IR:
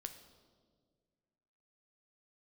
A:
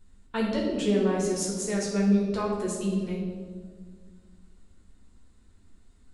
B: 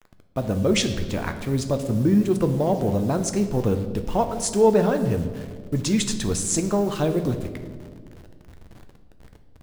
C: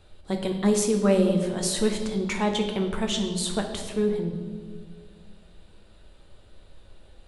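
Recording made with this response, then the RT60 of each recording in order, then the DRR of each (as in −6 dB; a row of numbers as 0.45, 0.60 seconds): B; 1.8, 1.8, 1.8 seconds; −4.0, 7.0, 2.5 decibels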